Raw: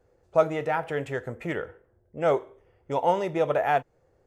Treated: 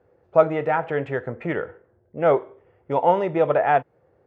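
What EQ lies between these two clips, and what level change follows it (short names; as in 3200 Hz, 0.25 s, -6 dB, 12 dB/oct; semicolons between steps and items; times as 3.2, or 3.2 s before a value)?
HPF 96 Hz; LPF 2300 Hz 12 dB/oct; +5.0 dB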